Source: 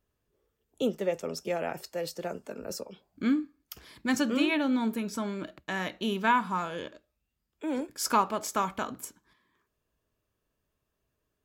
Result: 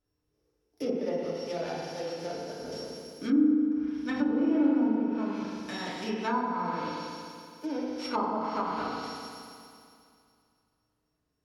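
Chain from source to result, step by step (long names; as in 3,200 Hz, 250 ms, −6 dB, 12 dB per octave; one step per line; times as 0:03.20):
samples sorted by size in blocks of 8 samples
feedback delay network reverb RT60 2.4 s, low-frequency decay 1.05×, high-frequency decay 1×, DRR −6.5 dB
treble cut that deepens with the level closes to 980 Hz, closed at −16.5 dBFS
level −7 dB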